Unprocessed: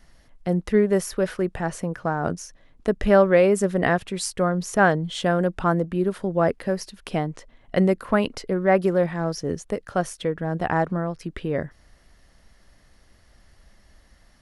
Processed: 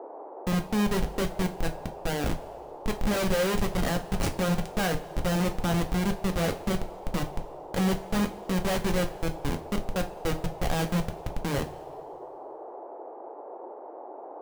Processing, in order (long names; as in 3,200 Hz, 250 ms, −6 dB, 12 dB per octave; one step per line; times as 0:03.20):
comparator with hysteresis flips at −22 dBFS
coupled-rooms reverb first 0.27 s, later 1.9 s, from −19 dB, DRR 4.5 dB
noise in a band 330–890 Hz −39 dBFS
level −3 dB